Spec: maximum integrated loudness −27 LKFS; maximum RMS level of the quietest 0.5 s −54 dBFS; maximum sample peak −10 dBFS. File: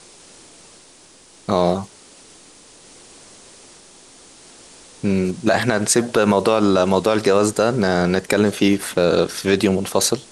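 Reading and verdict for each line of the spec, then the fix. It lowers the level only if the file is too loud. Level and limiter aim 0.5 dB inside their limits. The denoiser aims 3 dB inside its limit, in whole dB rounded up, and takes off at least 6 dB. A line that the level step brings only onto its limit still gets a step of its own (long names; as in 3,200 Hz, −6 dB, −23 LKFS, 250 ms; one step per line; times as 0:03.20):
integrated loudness −18.0 LKFS: out of spec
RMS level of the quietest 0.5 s −48 dBFS: out of spec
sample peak −4.5 dBFS: out of spec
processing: level −9.5 dB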